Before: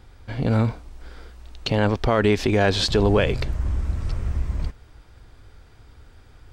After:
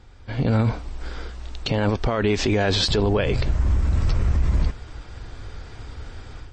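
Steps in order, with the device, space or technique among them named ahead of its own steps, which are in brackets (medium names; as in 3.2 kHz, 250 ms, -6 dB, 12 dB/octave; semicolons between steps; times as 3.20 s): low-bitrate web radio (level rider gain up to 12 dB; peak limiter -12 dBFS, peak gain reduction 10.5 dB; MP3 32 kbps 24 kHz)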